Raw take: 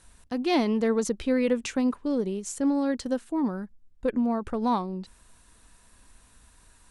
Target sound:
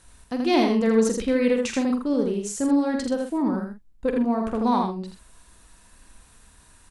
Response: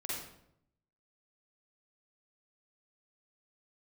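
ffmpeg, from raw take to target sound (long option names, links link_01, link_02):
-filter_complex "[0:a]asplit=2[link_01][link_02];[link_02]adelay=45,volume=-8.5dB[link_03];[link_01][link_03]amix=inputs=2:normalize=0,asplit=2[link_04][link_05];[link_05]aecho=0:1:81:0.631[link_06];[link_04][link_06]amix=inputs=2:normalize=0,volume=2dB"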